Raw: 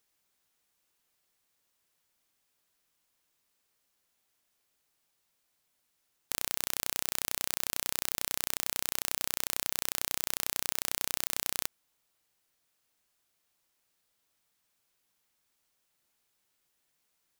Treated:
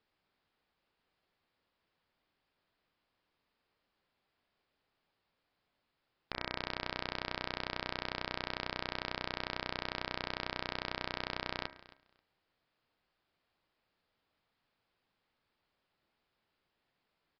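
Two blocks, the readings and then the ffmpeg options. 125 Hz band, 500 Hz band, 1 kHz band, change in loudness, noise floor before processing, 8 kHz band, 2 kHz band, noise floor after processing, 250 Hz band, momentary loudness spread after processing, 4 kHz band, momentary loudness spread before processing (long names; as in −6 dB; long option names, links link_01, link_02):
+4.5 dB, +4.0 dB, +3.0 dB, −7.5 dB, −77 dBFS, −33.5 dB, +0.5 dB, −84 dBFS, +4.0 dB, 2 LU, −3.5 dB, 1 LU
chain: -filter_complex "[0:a]highshelf=frequency=2700:gain=-11,bandreject=frequency=68.94:width_type=h:width=4,bandreject=frequency=137.88:width_type=h:width=4,bandreject=frequency=206.82:width_type=h:width=4,bandreject=frequency=275.76:width_type=h:width=4,bandreject=frequency=344.7:width_type=h:width=4,bandreject=frequency=413.64:width_type=h:width=4,bandreject=frequency=482.58:width_type=h:width=4,bandreject=frequency=551.52:width_type=h:width=4,bandreject=frequency=620.46:width_type=h:width=4,bandreject=frequency=689.4:width_type=h:width=4,bandreject=frequency=758.34:width_type=h:width=4,bandreject=frequency=827.28:width_type=h:width=4,bandreject=frequency=896.22:width_type=h:width=4,bandreject=frequency=965.16:width_type=h:width=4,bandreject=frequency=1034.1:width_type=h:width=4,bandreject=frequency=1103.04:width_type=h:width=4,bandreject=frequency=1171.98:width_type=h:width=4,bandreject=frequency=1240.92:width_type=h:width=4,bandreject=frequency=1309.86:width_type=h:width=4,bandreject=frequency=1378.8:width_type=h:width=4,bandreject=frequency=1447.74:width_type=h:width=4,bandreject=frequency=1516.68:width_type=h:width=4,bandreject=frequency=1585.62:width_type=h:width=4,bandreject=frequency=1654.56:width_type=h:width=4,bandreject=frequency=1723.5:width_type=h:width=4,bandreject=frequency=1792.44:width_type=h:width=4,bandreject=frequency=1861.38:width_type=h:width=4,bandreject=frequency=1930.32:width_type=h:width=4,bandreject=frequency=1999.26:width_type=h:width=4,bandreject=frequency=2068.2:width_type=h:width=4,bandreject=frequency=2137.14:width_type=h:width=4,bandreject=frequency=2206.08:width_type=h:width=4,bandreject=frequency=2275.02:width_type=h:width=4,bandreject=frequency=2343.96:width_type=h:width=4,asplit=2[link_01][link_02];[link_02]aecho=0:1:268|536:0.112|0.018[link_03];[link_01][link_03]amix=inputs=2:normalize=0,aresample=11025,aresample=44100,volume=4.5dB"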